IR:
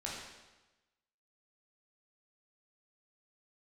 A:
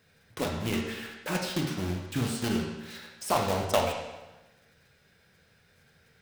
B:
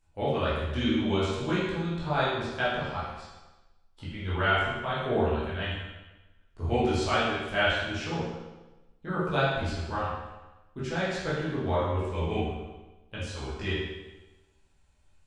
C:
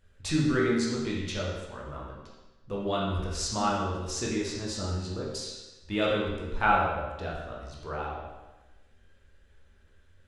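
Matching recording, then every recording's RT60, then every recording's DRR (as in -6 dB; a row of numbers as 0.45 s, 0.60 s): C; 1.1 s, 1.1 s, 1.1 s; 0.5 dB, -11.0 dB, -5.0 dB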